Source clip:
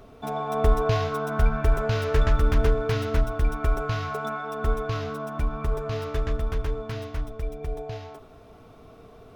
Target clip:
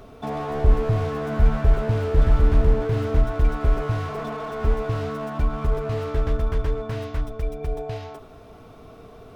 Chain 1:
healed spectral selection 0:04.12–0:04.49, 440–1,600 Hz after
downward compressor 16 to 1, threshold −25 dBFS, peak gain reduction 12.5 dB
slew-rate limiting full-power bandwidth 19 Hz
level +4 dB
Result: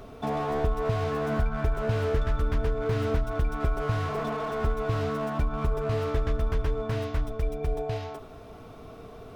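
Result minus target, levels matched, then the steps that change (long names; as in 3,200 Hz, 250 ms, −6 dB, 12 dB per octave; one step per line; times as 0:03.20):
downward compressor: peak gain reduction +12.5 dB
remove: downward compressor 16 to 1, threshold −25 dBFS, peak gain reduction 12.5 dB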